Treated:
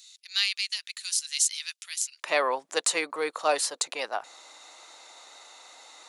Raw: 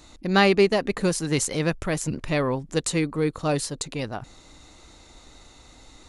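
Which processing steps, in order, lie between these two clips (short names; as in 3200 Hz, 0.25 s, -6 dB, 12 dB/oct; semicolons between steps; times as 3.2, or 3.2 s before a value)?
ladder high-pass 2700 Hz, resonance 20%, from 2.22 s 510 Hz; gain +8 dB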